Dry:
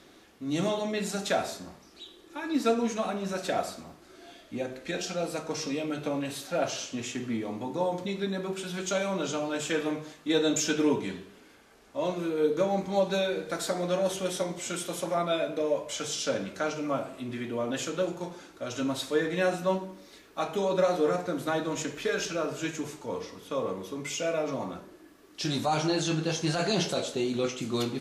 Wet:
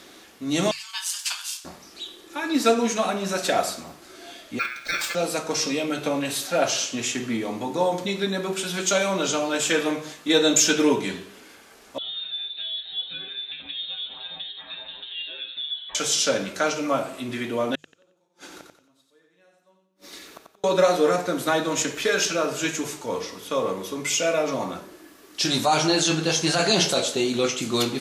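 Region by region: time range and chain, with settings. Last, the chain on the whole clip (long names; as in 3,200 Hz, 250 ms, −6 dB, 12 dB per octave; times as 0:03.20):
0:00.71–0:01.65: Butterworth high-pass 1,900 Hz 96 dB per octave + high-shelf EQ 9,800 Hz +5 dB + ring modulation 1,000 Hz
0:04.59–0:05.15: ring modulation 1,900 Hz + linearly interpolated sample-rate reduction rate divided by 2×
0:11.98–0:15.95: downward compressor 2 to 1, threshold −35 dBFS + tuned comb filter 120 Hz, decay 0.19 s, mix 100% + voice inversion scrambler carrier 4,000 Hz
0:17.75–0:20.64: gate with flip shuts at −33 dBFS, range −41 dB + repeating echo 90 ms, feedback 33%, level −5 dB
whole clip: spectral tilt +1.5 dB per octave; mains-hum notches 50/100/150 Hz; level +7.5 dB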